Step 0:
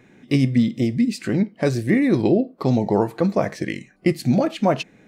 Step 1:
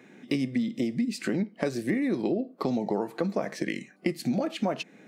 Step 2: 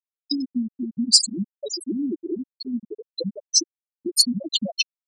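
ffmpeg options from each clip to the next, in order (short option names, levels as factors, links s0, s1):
-af "highpass=f=170:w=0.5412,highpass=f=170:w=1.3066,bandreject=f=1000:w=27,acompressor=threshold=0.0562:ratio=5"
-af "aeval=exprs='val(0)+0.5*0.0266*sgn(val(0))':c=same,aexciter=amount=9.1:drive=7.9:freq=3100,afftfilt=real='re*gte(hypot(re,im),0.501)':imag='im*gte(hypot(re,im),0.501)':win_size=1024:overlap=0.75,volume=1.12"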